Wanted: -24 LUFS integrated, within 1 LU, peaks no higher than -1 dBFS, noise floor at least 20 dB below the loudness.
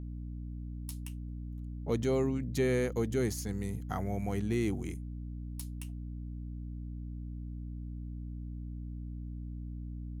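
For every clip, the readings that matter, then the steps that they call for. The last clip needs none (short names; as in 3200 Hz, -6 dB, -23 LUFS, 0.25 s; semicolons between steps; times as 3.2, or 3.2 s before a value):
hum 60 Hz; harmonics up to 300 Hz; hum level -38 dBFS; loudness -37.0 LUFS; peak -18.0 dBFS; loudness target -24.0 LUFS
-> notches 60/120/180/240/300 Hz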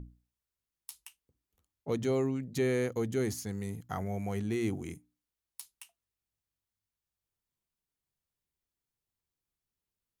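hum none; loudness -33.5 LUFS; peak -18.5 dBFS; loudness target -24.0 LUFS
-> gain +9.5 dB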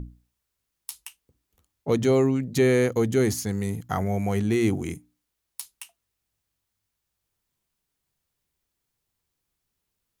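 loudness -24.0 LUFS; peak -9.0 dBFS; noise floor -81 dBFS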